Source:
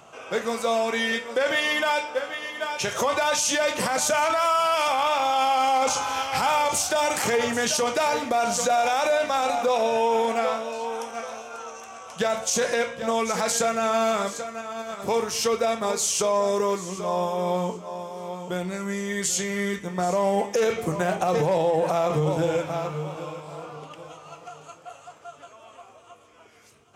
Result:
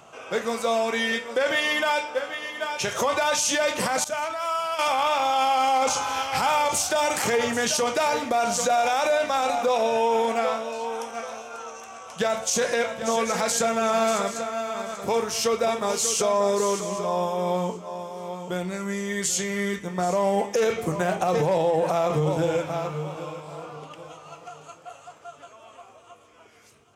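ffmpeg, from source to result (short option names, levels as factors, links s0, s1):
-filter_complex "[0:a]asettb=1/sr,asplit=3[s0][s1][s2];[s0]atrim=end=4.044[s3];[s1]atrim=start=4.04:end=4.79,asetpts=PTS-STARTPTS,afade=t=in:d=0.004:c=qsin,afade=t=out:st=0.746:d=0.004:c=qsin,agate=range=0.0224:threshold=0.141:ratio=3:release=100:detection=peak[s4];[s2]atrim=start=4.786[s5];[s3][s4]acrossfade=d=0.004:c1=hsin:c2=qsin[s6];[s6][s5]acrossfade=d=0.004:c1=qsin:c2=hsin,asplit=3[s7][s8][s9];[s7]afade=t=out:st=12.83:d=0.02[s10];[s8]aecho=1:1:588:0.335,afade=t=in:st=12.83:d=0.02,afade=t=out:st=17.05:d=0.02[s11];[s9]afade=t=in:st=17.05:d=0.02[s12];[s10][s11][s12]amix=inputs=3:normalize=0"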